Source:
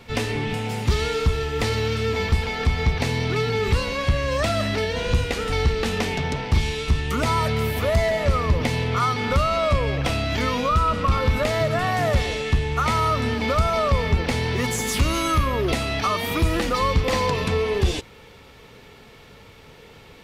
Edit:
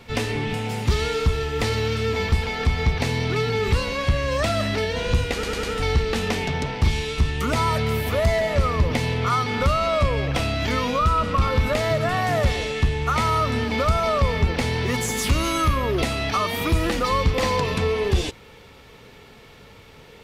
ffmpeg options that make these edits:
ffmpeg -i in.wav -filter_complex "[0:a]asplit=4[link_01][link_02][link_03][link_04];[link_01]atrim=end=5.432[link_05];[link_02]atrim=start=5.328:end=5.432[link_06];[link_03]atrim=start=5.328:end=5.432[link_07];[link_04]atrim=start=5.328[link_08];[link_05][link_06]acrossfade=duration=0.004:curve1=hsin:curve2=hsin[link_09];[link_09][link_07]acrossfade=duration=0.004:curve1=hsin:curve2=hsin[link_10];[link_10][link_08]acrossfade=duration=0.004:curve1=hsin:curve2=hsin" out.wav

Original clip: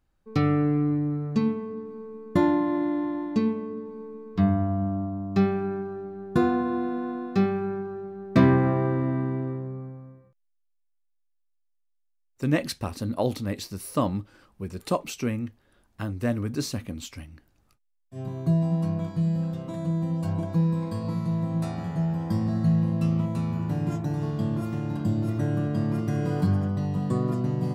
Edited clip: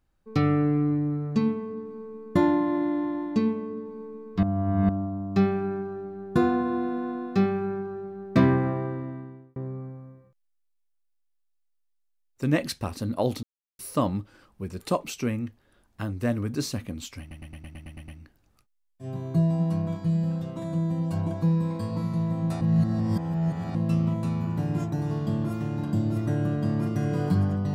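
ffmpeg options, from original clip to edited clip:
ffmpeg -i in.wav -filter_complex "[0:a]asplit=16[link_01][link_02][link_03][link_04][link_05][link_06][link_07][link_08][link_09][link_10][link_11][link_12][link_13][link_14][link_15][link_16];[link_01]atrim=end=4.432[link_17];[link_02]atrim=start=4.428:end=4.892,asetpts=PTS-STARTPTS,areverse[link_18];[link_03]atrim=start=4.888:end=9.56,asetpts=PTS-STARTPTS,afade=type=out:start_time=3.312:duration=1.36[link_19];[link_04]atrim=start=9.56:end=13.43,asetpts=PTS-STARTPTS,afade=type=in:duration=0.004:curve=hsin,afade=type=out:start_time=3.866:duration=0.004:curve=hsin[link_20];[link_05]atrim=start=13.43:end=13.79,asetpts=PTS-STARTPTS,volume=0[link_21];[link_06]atrim=start=13.79:end=17.312,asetpts=PTS-STARTPTS,afade=type=in:duration=0.004:curve=hsin[link_22];[link_07]atrim=start=17.198:end=17.312[link_23];[link_08]atrim=start=17.198:end=17.312[link_24];[link_09]atrim=start=17.198:end=17.312[link_25];[link_10]atrim=start=17.198:end=17.312[link_26];[link_11]atrim=start=17.198:end=17.312[link_27];[link_12]atrim=start=17.198:end=17.312[link_28];[link_13]atrim=start=17.198:end=17.312[link_29];[link_14]atrim=start=17.198:end=21.732[link_30];[link_15]atrim=start=21.728:end=22.872,asetpts=PTS-STARTPTS,areverse[link_31];[link_16]atrim=start=22.868[link_32];[link_17][link_18]acrossfade=duration=0.004:curve1=hsin:curve2=hsin[link_33];[link_19][link_20][link_21][link_22]concat=n=4:v=0:a=1[link_34];[link_33][link_34]acrossfade=duration=0.004:curve1=hsin:curve2=hsin[link_35];[link_35][link_23]acrossfade=duration=0.004:curve1=hsin:curve2=hsin[link_36];[link_36][link_24]acrossfade=duration=0.004:curve1=hsin:curve2=hsin[link_37];[link_37][link_25]acrossfade=duration=0.004:curve1=hsin:curve2=hsin[link_38];[link_38][link_26]acrossfade=duration=0.004:curve1=hsin:curve2=hsin[link_39];[link_39][link_27]acrossfade=duration=0.004:curve1=hsin:curve2=hsin[link_40];[link_40][link_28]acrossfade=duration=0.004:curve1=hsin:curve2=hsin[link_41];[link_41][link_29]acrossfade=duration=0.004:curve1=hsin:curve2=hsin[link_42];[link_42][link_30]acrossfade=duration=0.004:curve1=hsin:curve2=hsin[link_43];[link_43][link_31]acrossfade=duration=0.004:curve1=hsin:curve2=hsin[link_44];[link_44][link_32]acrossfade=duration=0.004:curve1=hsin:curve2=hsin" out.wav

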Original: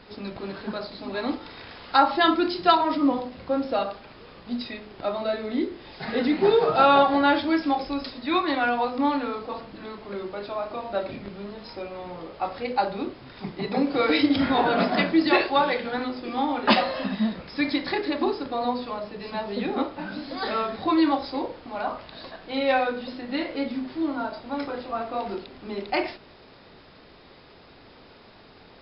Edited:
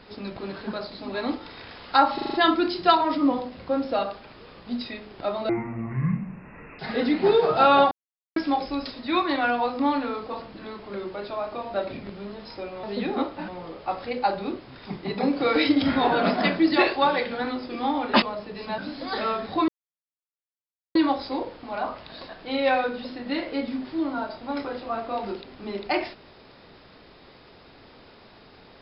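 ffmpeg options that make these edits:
ffmpeg -i in.wav -filter_complex "[0:a]asplit=15[link_01][link_02][link_03][link_04][link_05][link_06][link_07][link_08][link_09][link_10][link_11][link_12][link_13][link_14][link_15];[link_01]atrim=end=2.182[link_16];[link_02]atrim=start=2.138:end=2.182[link_17];[link_03]atrim=start=2.138:end=2.182[link_18];[link_04]atrim=start=2.138:end=2.182[link_19];[link_05]atrim=start=2.138:end=2.182[link_20];[link_06]atrim=start=2.138:end=5.294[link_21];[link_07]atrim=start=5.29:end=5.98,asetpts=PTS-STARTPTS,asetrate=23373,aresample=44100,atrim=end_sample=57413,asetpts=PTS-STARTPTS[link_22];[link_08]atrim=start=5.976:end=7.1,asetpts=PTS-STARTPTS,afade=type=out:start_time=1.12:duration=0.004:curve=hsin[link_23];[link_09]atrim=start=7.1:end=7.55,asetpts=PTS-STARTPTS,volume=0[link_24];[link_10]atrim=start=7.55:end=12.022,asetpts=PTS-STARTPTS,afade=type=in:duration=0.004:curve=hsin[link_25];[link_11]atrim=start=19.428:end=20.082[link_26];[link_12]atrim=start=12.018:end=16.762[link_27];[link_13]atrim=start=18.868:end=19.432[link_28];[link_14]atrim=start=20.078:end=20.98,asetpts=PTS-STARTPTS,afade=type=out:start_time=0.898:duration=0.004:curve=hsin,apad=pad_dur=1.27[link_29];[link_15]atrim=start=20.98,asetpts=PTS-STARTPTS,afade=type=in:duration=0.004:curve=hsin[link_30];[link_16][link_17]acrossfade=duration=0.004:curve1=hsin:curve2=hsin[link_31];[link_31][link_18]acrossfade=duration=0.004:curve1=hsin:curve2=hsin[link_32];[link_32][link_19]acrossfade=duration=0.004:curve1=hsin:curve2=hsin[link_33];[link_33][link_20]acrossfade=duration=0.004:curve1=hsin:curve2=hsin[link_34];[link_34][link_21]acrossfade=duration=0.004:curve1=hsin:curve2=hsin[link_35];[link_35][link_22]acrossfade=duration=0.004:curve1=hsin:curve2=hsin[link_36];[link_23][link_24][link_25]concat=n=3:v=0:a=1[link_37];[link_36][link_37]acrossfade=duration=0.004:curve1=hsin:curve2=hsin[link_38];[link_38][link_26]acrossfade=duration=0.004:curve1=hsin:curve2=hsin[link_39];[link_39][link_27]acrossfade=duration=0.004:curve1=hsin:curve2=hsin[link_40];[link_40][link_28]acrossfade=duration=0.004:curve1=hsin:curve2=hsin[link_41];[link_29][link_30]concat=n=2:v=0:a=1[link_42];[link_41][link_42]acrossfade=duration=0.004:curve1=hsin:curve2=hsin" out.wav

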